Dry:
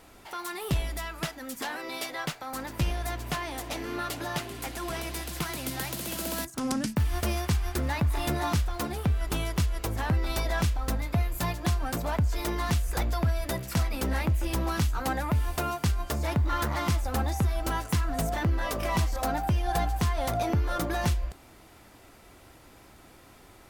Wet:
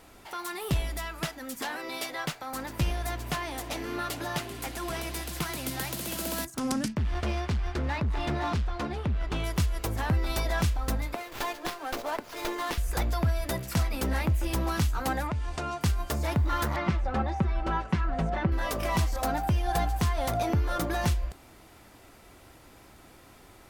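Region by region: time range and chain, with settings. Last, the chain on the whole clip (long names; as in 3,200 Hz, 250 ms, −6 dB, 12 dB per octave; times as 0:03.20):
0:06.88–0:09.44: low-pass filter 4,000 Hz + gain into a clipping stage and back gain 24.5 dB
0:11.14–0:12.78: inverse Chebyshev high-pass filter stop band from 150 Hz + high-shelf EQ 7,200 Hz +6 dB + windowed peak hold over 5 samples
0:15.27–0:15.81: low-pass filter 7,800 Hz 24 dB per octave + downward compressor 3 to 1, threshold −29 dBFS
0:16.76–0:18.52: low-pass filter 2,600 Hz + comb filter 5.3 ms, depth 52%
whole clip: no processing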